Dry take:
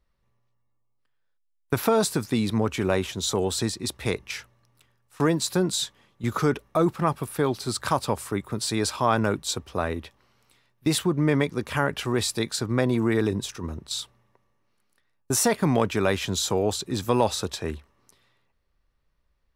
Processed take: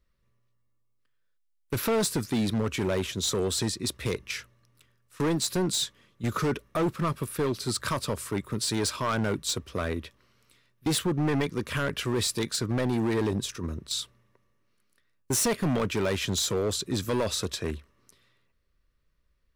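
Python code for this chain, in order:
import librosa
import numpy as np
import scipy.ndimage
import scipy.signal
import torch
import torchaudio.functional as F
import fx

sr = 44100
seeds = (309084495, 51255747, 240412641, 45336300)

y = fx.peak_eq(x, sr, hz=810.0, db=-14.0, octaves=0.38)
y = np.clip(y, -10.0 ** (-22.0 / 20.0), 10.0 ** (-22.0 / 20.0))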